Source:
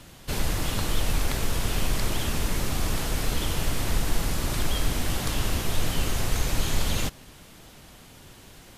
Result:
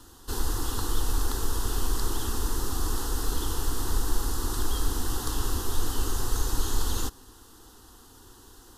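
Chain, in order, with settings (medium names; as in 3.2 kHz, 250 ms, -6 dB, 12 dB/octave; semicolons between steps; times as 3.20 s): static phaser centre 610 Hz, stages 6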